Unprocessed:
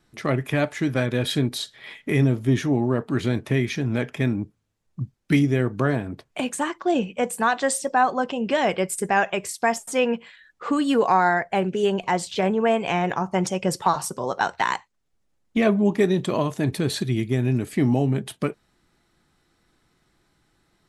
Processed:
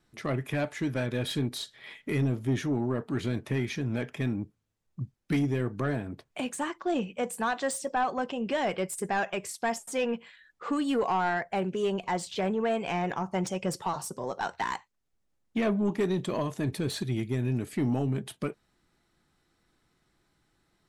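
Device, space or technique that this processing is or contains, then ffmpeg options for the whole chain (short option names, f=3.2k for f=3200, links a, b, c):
saturation between pre-emphasis and de-emphasis: -filter_complex "[0:a]highshelf=f=2.6k:g=10.5,asoftclip=type=tanh:threshold=-14dB,highshelf=f=2.6k:g=-10.5,asettb=1/sr,asplit=3[a][b][c];[a]atrim=end=13.824[d];[b]atrim=start=13.82:end=14.43,asetpts=PTS-STARTPTS,afade=t=in:d=0.004:c=qsin,afade=t=out:st=0.606:d=0.004:c=qsin,equalizer=f=2k:w=0.72:g=-5[e];[c]atrim=start=14.426[f];[d][e]acrossfade=d=0.004:c1=hsin:c2=qsin[g];[g][f]acrossfade=d=0.004:c1=qsin:c2=hsin,volume=-5.5dB"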